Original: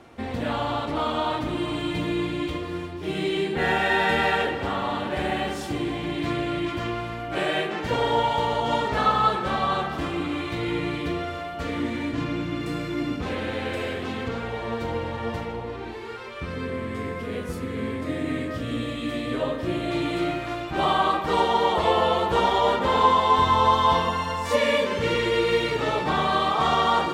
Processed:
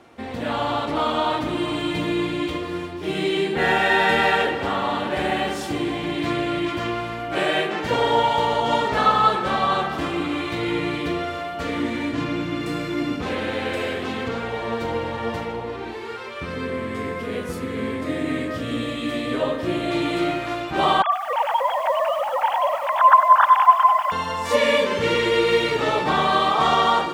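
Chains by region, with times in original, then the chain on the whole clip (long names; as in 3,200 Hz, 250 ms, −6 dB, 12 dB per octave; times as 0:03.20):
0:21.02–0:24.12: three sine waves on the formant tracks + high-pass filter 220 Hz + feedback echo at a low word length 97 ms, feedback 80%, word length 7 bits, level −12 dB
whole clip: low-shelf EQ 110 Hz −9.5 dB; automatic gain control gain up to 4 dB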